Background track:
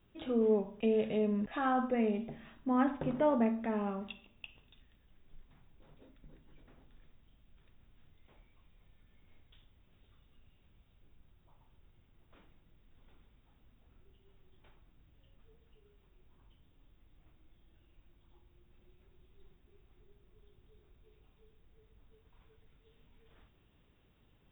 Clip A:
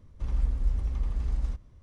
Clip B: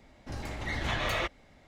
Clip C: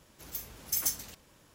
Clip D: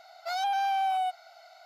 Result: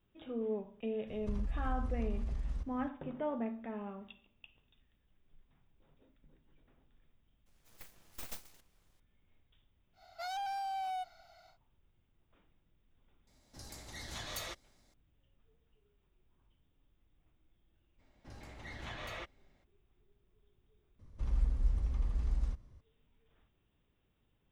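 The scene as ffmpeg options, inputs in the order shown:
ffmpeg -i bed.wav -i cue0.wav -i cue1.wav -i cue2.wav -i cue3.wav -filter_complex "[1:a]asplit=2[link_01][link_02];[2:a]asplit=2[link_03][link_04];[0:a]volume=-8dB[link_05];[link_01]acompressor=threshold=-33dB:ratio=6:attack=3.2:release=140:knee=1:detection=peak[link_06];[3:a]aeval=exprs='abs(val(0))':channel_layout=same[link_07];[4:a]volume=27dB,asoftclip=hard,volume=-27dB[link_08];[link_03]aexciter=amount=6.1:drive=3.6:freq=3900[link_09];[link_05]asplit=2[link_10][link_11];[link_10]atrim=end=20.994[link_12];[link_02]atrim=end=1.82,asetpts=PTS-STARTPTS,volume=-4.5dB[link_13];[link_11]atrim=start=22.806[link_14];[link_06]atrim=end=1.82,asetpts=PTS-STARTPTS,afade=type=in:duration=0.004:curve=hsin,afade=type=out:start_time=1.816:duration=0.004:curve=hsin,adelay=1070[link_15];[link_07]atrim=end=1.54,asetpts=PTS-STARTPTS,volume=-12.5dB,afade=type=in:duration=0.004:curve=hsin,afade=type=out:start_time=1.536:duration=0.004:curve=hsin,adelay=328986S[link_16];[link_08]atrim=end=1.65,asetpts=PTS-STARTPTS,volume=-8.5dB,afade=type=in:duration=0.1,afade=type=out:start_time=1.55:duration=0.1,adelay=9930[link_17];[link_09]atrim=end=1.67,asetpts=PTS-STARTPTS,volume=-14.5dB,afade=type=in:duration=0.004:curve=hsin,afade=type=out:start_time=1.666:duration=0.004:curve=hsin,adelay=13270[link_18];[link_04]atrim=end=1.67,asetpts=PTS-STARTPTS,volume=-13.5dB,afade=type=in:duration=0.02,afade=type=out:start_time=1.65:duration=0.02,adelay=17980[link_19];[link_12][link_13]acrossfade=duration=0.004:curve1=hsin:curve2=hsin[link_20];[link_20][link_14]acrossfade=duration=0.004:curve1=hsin:curve2=hsin[link_21];[link_21][link_15][link_16][link_17][link_18][link_19]amix=inputs=6:normalize=0" out.wav

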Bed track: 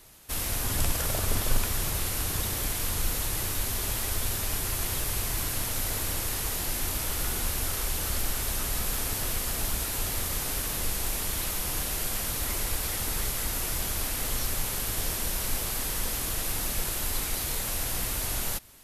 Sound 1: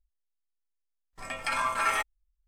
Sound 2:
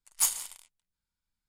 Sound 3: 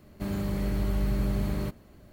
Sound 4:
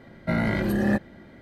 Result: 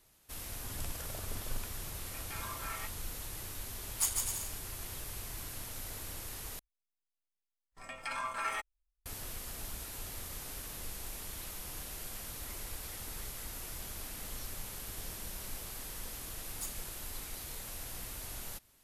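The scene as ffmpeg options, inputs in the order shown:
ffmpeg -i bed.wav -i cue0.wav -i cue1.wav -i cue2.wav -filter_complex "[1:a]asplit=2[link_01][link_02];[2:a]asplit=2[link_03][link_04];[0:a]volume=-13dB[link_05];[link_01]flanger=delay=16.5:depth=2.5:speed=2.8[link_06];[link_03]aecho=1:1:150|255|328.5|380|416|441.2:0.631|0.398|0.251|0.158|0.1|0.0631[link_07];[3:a]acompressor=threshold=-44dB:ratio=6:attack=3.2:release=140:knee=1:detection=peak[link_08];[link_05]asplit=2[link_09][link_10];[link_09]atrim=end=6.594[link_11];[link_02]atrim=end=2.47,asetpts=PTS-STARTPTS,volume=-9dB[link_12];[link_10]atrim=start=9.056[link_13];[link_06]atrim=end=2.47,asetpts=PTS-STARTPTS,volume=-13dB,afade=type=in:duration=0.004:curve=hsin,afade=type=out:start_time=2.466:duration=0.004:curve=hsin,adelay=840[link_14];[link_07]atrim=end=1.48,asetpts=PTS-STARTPTS,volume=-6dB,afade=type=in:duration=0.004:curve=hsin,afade=type=out:start_time=1.476:duration=0.004:curve=hsin,adelay=3800[link_15];[link_08]atrim=end=2.12,asetpts=PTS-STARTPTS,volume=-14.5dB,afade=type=in:duration=0.004:curve=hsin,afade=type=out:start_time=2.116:duration=0.004:curve=hsin,adelay=608580S[link_16];[link_04]atrim=end=1.48,asetpts=PTS-STARTPTS,volume=-17dB,afade=type=in:duration=0.004:curve=hsin,afade=type=out:start_time=1.476:duration=0.004:curve=hsin,adelay=16400[link_17];[link_11][link_12]acrossfade=duration=0.004:curve1=hsin:curve2=hsin[link_18];[link_18][link_13]acrossfade=duration=0.004:curve1=hsin:curve2=hsin[link_19];[link_19][link_14][link_15][link_16][link_17]amix=inputs=5:normalize=0" out.wav

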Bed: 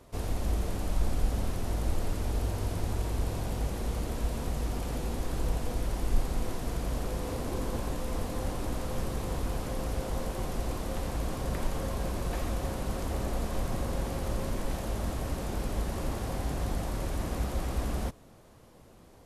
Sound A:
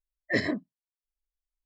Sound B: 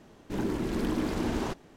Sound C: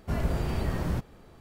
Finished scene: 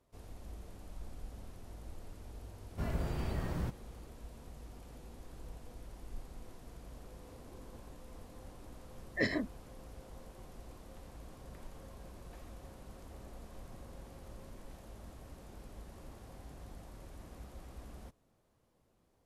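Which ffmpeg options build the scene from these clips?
ffmpeg -i bed.wav -i cue0.wav -i cue1.wav -i cue2.wav -filter_complex "[0:a]volume=-18.5dB[link_01];[3:a]atrim=end=1.4,asetpts=PTS-STARTPTS,volume=-7.5dB,afade=type=in:duration=0.004:curve=hsin,afade=type=out:start_time=1.396:duration=0.004:curve=hsin,adelay=2700[link_02];[1:a]atrim=end=1.65,asetpts=PTS-STARTPTS,volume=-5.5dB,afade=type=in:duration=0.004:curve=hsin,afade=type=out:start_time=1.646:duration=0.004:curve=hsin,adelay=8870[link_03];[link_01][link_02][link_03]amix=inputs=3:normalize=0" out.wav

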